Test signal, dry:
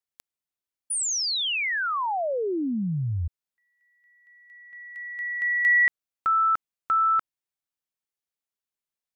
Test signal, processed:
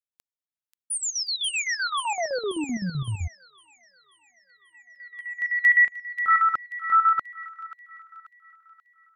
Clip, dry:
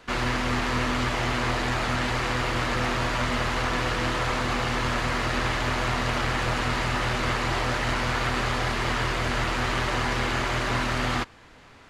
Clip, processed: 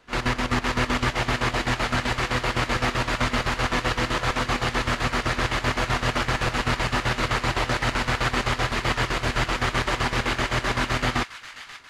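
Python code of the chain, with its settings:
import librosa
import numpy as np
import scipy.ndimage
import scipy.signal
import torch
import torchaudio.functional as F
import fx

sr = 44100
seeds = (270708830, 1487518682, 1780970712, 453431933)

y = fx.chopper(x, sr, hz=7.8, depth_pct=65, duty_pct=60)
y = fx.echo_wet_highpass(y, sr, ms=535, feedback_pct=57, hz=1600.0, wet_db=-6)
y = fx.upward_expand(y, sr, threshold_db=-46.0, expansion=1.5)
y = F.gain(torch.from_numpy(y), 4.0).numpy()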